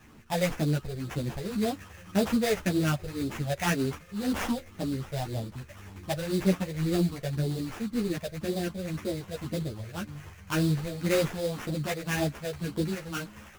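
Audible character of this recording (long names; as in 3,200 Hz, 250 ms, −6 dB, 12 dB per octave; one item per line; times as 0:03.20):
phaser sweep stages 6, 1.9 Hz, lowest notch 270–1,600 Hz
aliases and images of a low sample rate 4,300 Hz, jitter 20%
a shimmering, thickened sound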